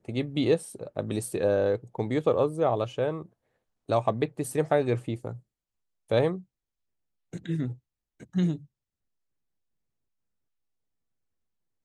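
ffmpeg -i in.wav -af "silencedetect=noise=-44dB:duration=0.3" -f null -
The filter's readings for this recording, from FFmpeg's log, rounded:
silence_start: 3.26
silence_end: 3.89 | silence_duration: 0.63
silence_start: 5.39
silence_end: 6.10 | silence_duration: 0.72
silence_start: 6.42
silence_end: 7.33 | silence_duration: 0.91
silence_start: 7.75
silence_end: 8.20 | silence_duration: 0.45
silence_start: 8.64
silence_end: 11.85 | silence_duration: 3.21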